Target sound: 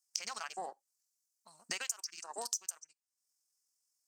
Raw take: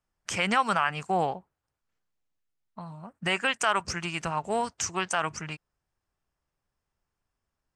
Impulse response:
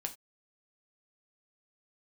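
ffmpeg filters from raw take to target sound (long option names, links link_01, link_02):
-filter_complex "[0:a]atempo=1.9,highpass=380,equalizer=frequency=5600:width_type=o:width=2.2:gain=13,afwtdn=0.0224,aexciter=amount=11.9:drive=4.6:freq=4900,acompressor=threshold=-36dB:ratio=8,asplit=2[link_01][link_02];[1:a]atrim=start_sample=2205[link_03];[link_02][link_03]afir=irnorm=-1:irlink=0,volume=-16.5dB[link_04];[link_01][link_04]amix=inputs=2:normalize=0,volume=-2.5dB"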